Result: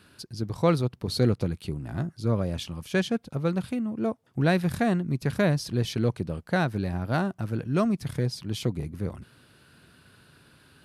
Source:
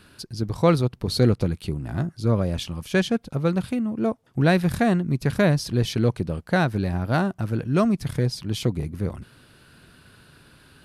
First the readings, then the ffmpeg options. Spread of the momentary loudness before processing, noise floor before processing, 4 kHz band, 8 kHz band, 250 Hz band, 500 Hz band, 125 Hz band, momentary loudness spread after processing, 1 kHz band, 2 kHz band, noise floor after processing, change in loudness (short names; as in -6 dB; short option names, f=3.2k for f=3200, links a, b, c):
9 LU, -54 dBFS, -4.0 dB, -4.0 dB, -4.0 dB, -4.0 dB, -4.5 dB, 9 LU, -4.0 dB, -4.0 dB, -59 dBFS, -4.0 dB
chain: -af "highpass=62,volume=-4dB"